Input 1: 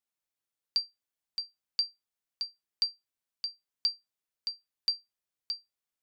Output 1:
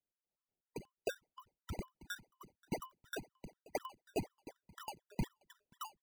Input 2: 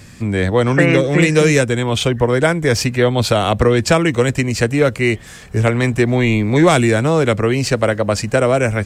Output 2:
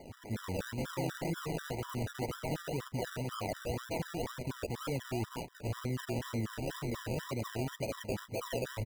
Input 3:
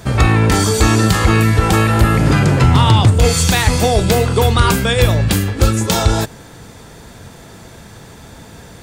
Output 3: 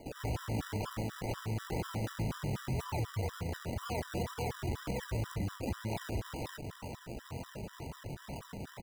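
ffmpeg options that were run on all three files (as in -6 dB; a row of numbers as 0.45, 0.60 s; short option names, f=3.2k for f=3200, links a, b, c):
-filter_complex "[0:a]highpass=68,lowshelf=f=370:g=-9.5,acrossover=split=430|3300[a][b][c];[a]adelay=90[d];[c]adelay=310[e];[d][b][e]amix=inputs=3:normalize=0,areverse,acompressor=threshold=-31dB:ratio=10,areverse,lowpass=f=6.5k:w=0.5412,lowpass=f=6.5k:w=1.3066,lowshelf=f=100:g=11.5,asplit=2[f][g];[g]aecho=0:1:941:0.0708[h];[f][h]amix=inputs=2:normalize=0,alimiter=level_in=2dB:limit=-24dB:level=0:latency=1:release=10,volume=-2dB,acrusher=samples=33:mix=1:aa=0.000001:lfo=1:lforange=19.8:lforate=2,afftfilt=real='re*gt(sin(2*PI*4.1*pts/sr)*(1-2*mod(floor(b*sr/1024/990),2)),0)':imag='im*gt(sin(2*PI*4.1*pts/sr)*(1-2*mod(floor(b*sr/1024/990),2)),0)':win_size=1024:overlap=0.75"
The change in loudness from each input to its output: -11.5, -23.0, -26.0 LU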